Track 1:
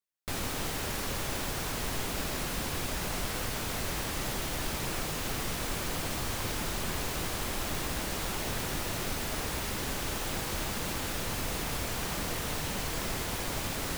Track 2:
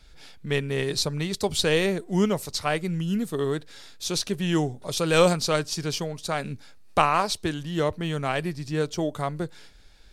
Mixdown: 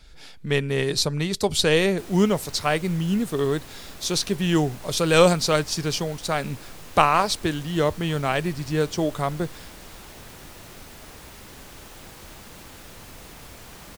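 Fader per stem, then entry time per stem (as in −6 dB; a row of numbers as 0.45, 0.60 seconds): −9.5, +3.0 decibels; 1.70, 0.00 seconds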